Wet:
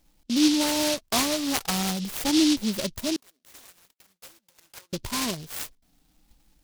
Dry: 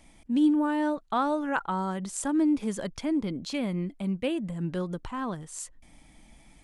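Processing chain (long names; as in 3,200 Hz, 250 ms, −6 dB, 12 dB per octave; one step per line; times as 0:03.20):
rippled gain that drifts along the octave scale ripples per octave 1.4, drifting +0.47 Hz, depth 12 dB
noise gate −44 dBFS, range −16 dB
in parallel at −2.5 dB: downward compressor, threshold −39 dBFS, peak gain reduction 20 dB
0:03.16–0:04.93: on the sum: four-pole ladder band-pass 1,800 Hz, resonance 70%
short delay modulated by noise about 4,100 Hz, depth 0.2 ms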